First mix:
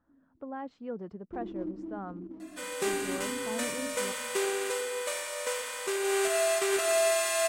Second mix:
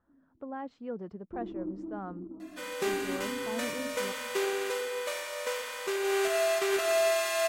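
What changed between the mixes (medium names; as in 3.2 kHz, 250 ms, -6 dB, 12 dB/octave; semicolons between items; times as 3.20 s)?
first sound: add steep low-pass 1.4 kHz 96 dB/octave; second sound: add peaking EQ 8.6 kHz -9.5 dB 0.56 oct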